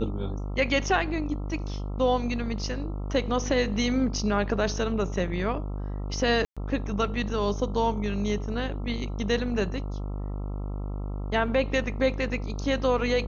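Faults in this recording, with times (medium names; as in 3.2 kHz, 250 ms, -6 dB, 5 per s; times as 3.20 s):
buzz 50 Hz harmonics 27 -32 dBFS
6.45–6.57 s: dropout 116 ms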